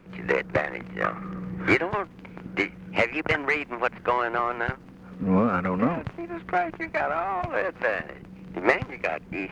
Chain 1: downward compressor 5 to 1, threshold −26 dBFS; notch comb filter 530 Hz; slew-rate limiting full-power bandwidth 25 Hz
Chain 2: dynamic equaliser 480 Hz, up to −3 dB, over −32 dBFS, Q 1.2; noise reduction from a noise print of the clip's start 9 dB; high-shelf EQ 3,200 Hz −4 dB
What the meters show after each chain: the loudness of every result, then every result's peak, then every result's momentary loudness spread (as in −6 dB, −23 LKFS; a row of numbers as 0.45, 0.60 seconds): −35.5, −29.0 LKFS; −17.5, −8.0 dBFS; 7, 11 LU